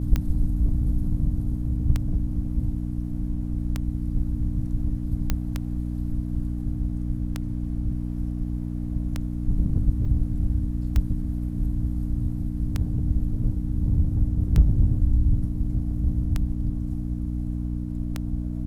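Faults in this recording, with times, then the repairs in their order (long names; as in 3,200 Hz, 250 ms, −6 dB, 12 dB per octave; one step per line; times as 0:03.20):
mains hum 60 Hz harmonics 5 −29 dBFS
scratch tick 33 1/3 rpm −12 dBFS
0:05.30: click −9 dBFS
0:10.05: drop-out 4.6 ms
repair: click removal
hum removal 60 Hz, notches 5
repair the gap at 0:10.05, 4.6 ms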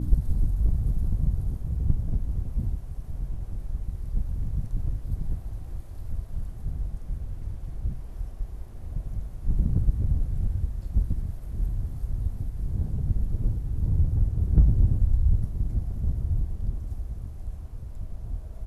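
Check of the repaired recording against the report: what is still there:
none of them is left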